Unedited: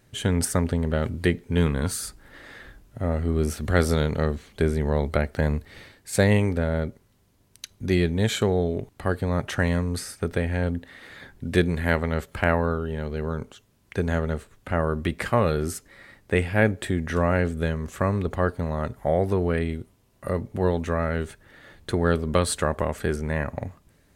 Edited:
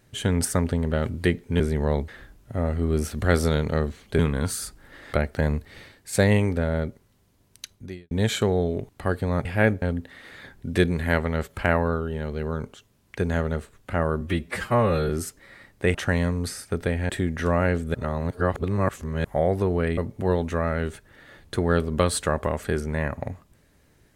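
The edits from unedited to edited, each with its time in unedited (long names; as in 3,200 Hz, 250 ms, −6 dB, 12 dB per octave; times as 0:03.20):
0:01.60–0:02.54: swap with 0:04.65–0:05.13
0:07.68–0:08.11: fade out quadratic
0:09.45–0:10.60: swap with 0:16.43–0:16.80
0:14.99–0:15.58: time-stretch 1.5×
0:17.65–0:18.95: reverse
0:19.68–0:20.33: remove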